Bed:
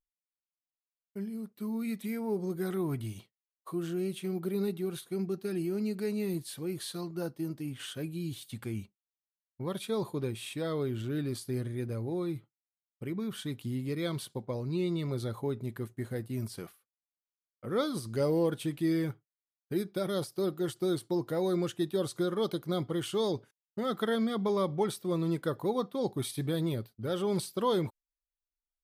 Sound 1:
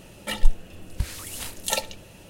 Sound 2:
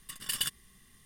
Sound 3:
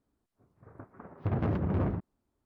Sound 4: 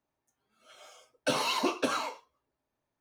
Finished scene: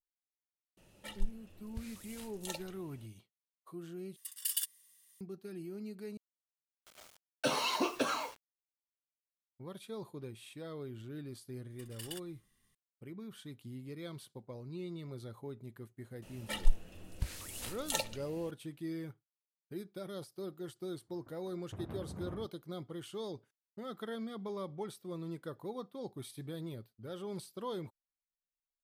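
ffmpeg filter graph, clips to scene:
ffmpeg -i bed.wav -i cue0.wav -i cue1.wav -i cue2.wav -i cue3.wav -filter_complex "[1:a]asplit=2[link_01][link_02];[2:a]asplit=2[link_03][link_04];[0:a]volume=-11.5dB[link_05];[link_03]aderivative[link_06];[4:a]acrusher=bits=7:mix=0:aa=0.000001[link_07];[link_05]asplit=3[link_08][link_09][link_10];[link_08]atrim=end=4.164[link_11];[link_06]atrim=end=1.05,asetpts=PTS-STARTPTS,volume=-2.5dB[link_12];[link_09]atrim=start=5.206:end=6.174[link_13];[link_07]atrim=end=3,asetpts=PTS-STARTPTS,volume=-3.5dB[link_14];[link_10]atrim=start=9.166[link_15];[link_01]atrim=end=2.29,asetpts=PTS-STARTPTS,volume=-17dB,afade=type=in:duration=0.004:curve=hsin,afade=type=out:start_time=2.286:duration=0.004:curve=hsin,adelay=770[link_16];[link_04]atrim=end=1.05,asetpts=PTS-STARTPTS,volume=-14.5dB,afade=type=in:duration=0.004:curve=hsin,afade=type=out:start_time=1.046:duration=0.004:curve=hsin,adelay=515970S[link_17];[link_02]atrim=end=2.29,asetpts=PTS-STARTPTS,volume=-9dB,afade=type=in:duration=0.004:curve=hsin,afade=type=out:start_time=2.286:duration=0.004:curve=hsin,adelay=16220[link_18];[3:a]atrim=end=2.45,asetpts=PTS-STARTPTS,volume=-15.5dB,afade=type=in:duration=0.004:curve=hsin,afade=type=out:start_time=2.446:duration=0.004:curve=hsin,adelay=20470[link_19];[link_11][link_12]acrossfade=duration=0.004:curve1=hsin:curve2=hsin[link_20];[link_20][link_13]acrossfade=duration=0.004:curve1=hsin:curve2=hsin[link_21];[link_21][link_14]acrossfade=duration=0.004:curve1=hsin:curve2=hsin[link_22];[link_22][link_15]acrossfade=duration=0.004:curve1=hsin:curve2=hsin[link_23];[link_23][link_16][link_17][link_18][link_19]amix=inputs=5:normalize=0" out.wav

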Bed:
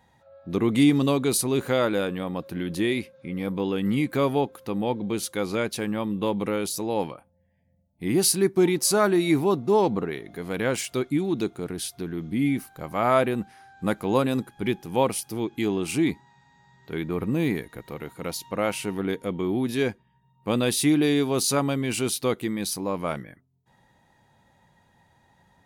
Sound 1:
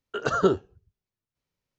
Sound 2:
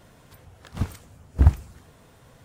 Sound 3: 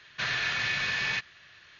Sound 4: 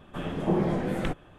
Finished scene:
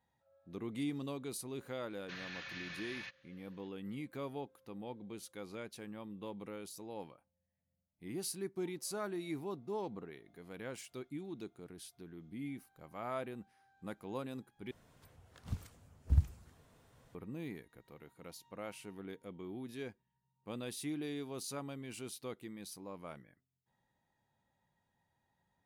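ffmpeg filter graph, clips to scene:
ffmpeg -i bed.wav -i cue0.wav -i cue1.wav -i cue2.wav -filter_complex "[0:a]volume=-19.5dB[link_01];[2:a]acrossover=split=220|3000[link_02][link_03][link_04];[link_03]acompressor=threshold=-41dB:ratio=6:attack=3.2:release=140:knee=2.83:detection=peak[link_05];[link_02][link_05][link_04]amix=inputs=3:normalize=0[link_06];[link_01]asplit=2[link_07][link_08];[link_07]atrim=end=14.714[link_09];[link_06]atrim=end=2.44,asetpts=PTS-STARTPTS,volume=-12dB[link_10];[link_08]atrim=start=17.146[link_11];[3:a]atrim=end=1.79,asetpts=PTS-STARTPTS,volume=-17.5dB,afade=type=in:duration=0.004:curve=hsin,afade=type=out:start_time=1.786:duration=0.004:curve=hsin,adelay=1900[link_12];[link_09][link_10]acrossfade=duration=0.004:curve1=hsin:curve2=hsin[link_13];[link_13][link_11]acrossfade=duration=0.004:curve1=hsin:curve2=hsin[link_14];[link_14][link_12]amix=inputs=2:normalize=0" out.wav

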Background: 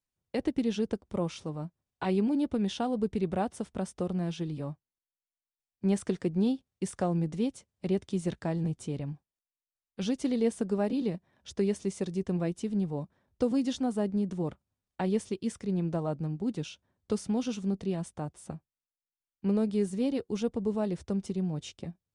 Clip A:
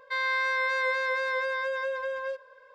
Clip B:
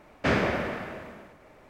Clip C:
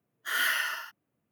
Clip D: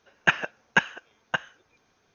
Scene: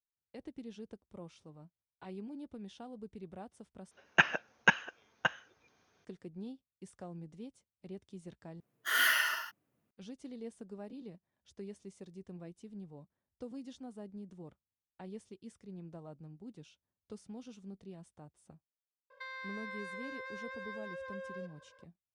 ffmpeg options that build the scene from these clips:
ffmpeg -i bed.wav -i cue0.wav -i cue1.wav -i cue2.wav -i cue3.wav -filter_complex "[0:a]volume=-17.5dB[link_01];[4:a]highpass=45[link_02];[1:a]acompressor=threshold=-33dB:ratio=6:attack=3.2:release=140:knee=1:detection=peak[link_03];[link_01]asplit=3[link_04][link_05][link_06];[link_04]atrim=end=3.914[link_07];[link_02]atrim=end=2.14,asetpts=PTS-STARTPTS,volume=-4dB[link_08];[link_05]atrim=start=6.046:end=8.604[link_09];[3:a]atrim=end=1.31,asetpts=PTS-STARTPTS,volume=-0.5dB[link_10];[link_06]atrim=start=9.906[link_11];[link_03]atrim=end=2.74,asetpts=PTS-STARTPTS,volume=-8.5dB,afade=type=in:duration=0.004:curve=hsin,afade=type=out:start_time=2.736:duration=0.004:curve=hsin,adelay=19100[link_12];[link_07][link_08]acrossfade=duration=0.004:curve1=hsin:curve2=hsin[link_13];[link_13][link_09]acrossfade=duration=0.004:curve1=hsin:curve2=hsin[link_14];[link_14][link_10]acrossfade=duration=0.004:curve1=hsin:curve2=hsin[link_15];[link_15][link_11]acrossfade=duration=0.004:curve1=hsin:curve2=hsin[link_16];[link_16][link_12]amix=inputs=2:normalize=0" out.wav

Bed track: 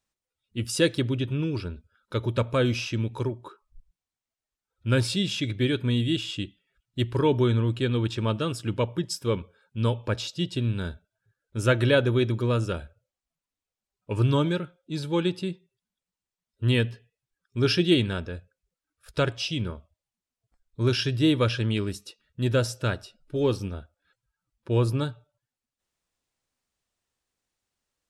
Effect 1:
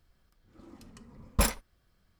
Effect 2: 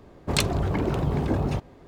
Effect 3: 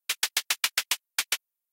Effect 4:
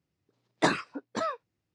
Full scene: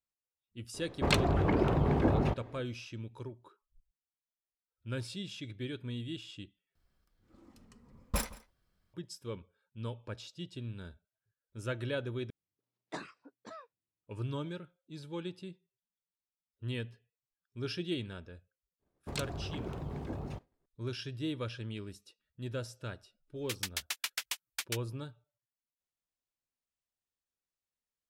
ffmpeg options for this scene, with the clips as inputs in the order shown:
ffmpeg -i bed.wav -i cue0.wav -i cue1.wav -i cue2.wav -i cue3.wav -filter_complex "[2:a]asplit=2[link_01][link_02];[0:a]volume=-15dB[link_03];[link_01]bass=frequency=250:gain=-3,treble=frequency=4000:gain=-11[link_04];[1:a]asplit=2[link_05][link_06];[link_06]adelay=169.1,volume=-19dB,highshelf=frequency=4000:gain=-3.8[link_07];[link_05][link_07]amix=inputs=2:normalize=0[link_08];[link_02]agate=range=-33dB:threshold=-39dB:ratio=3:release=100:detection=peak[link_09];[link_03]asplit=3[link_10][link_11][link_12];[link_10]atrim=end=6.754[link_13];[link_08]atrim=end=2.19,asetpts=PTS-STARTPTS,volume=-7.5dB[link_14];[link_11]atrim=start=8.936:end=12.304[link_15];[4:a]atrim=end=1.74,asetpts=PTS-STARTPTS,volume=-17.5dB[link_16];[link_12]atrim=start=14.036[link_17];[link_04]atrim=end=1.87,asetpts=PTS-STARTPTS,volume=-1dB,afade=type=in:duration=0.004:curve=hsin,afade=type=out:start_time=1.866:duration=0.004:curve=hsin,adelay=740[link_18];[link_09]atrim=end=1.87,asetpts=PTS-STARTPTS,volume=-15dB,afade=type=in:duration=0.004:curve=hsin,afade=type=out:start_time=1.866:duration=0.004:curve=hsin,adelay=18790[link_19];[3:a]atrim=end=1.72,asetpts=PTS-STARTPTS,volume=-10.5dB,afade=type=in:duration=0.004:curve=hsin,afade=type=out:start_time=1.716:duration=0.004:curve=hsin,adelay=1031940S[link_20];[link_13][link_14]acrossfade=duration=0.004:curve1=hsin:curve2=hsin[link_21];[link_21][link_15]acrossfade=duration=0.004:curve1=hsin:curve2=hsin[link_22];[link_22][link_16]acrossfade=duration=0.004:curve1=hsin:curve2=hsin[link_23];[link_23][link_17]acrossfade=duration=0.004:curve1=hsin:curve2=hsin[link_24];[link_24][link_18][link_19][link_20]amix=inputs=4:normalize=0" out.wav

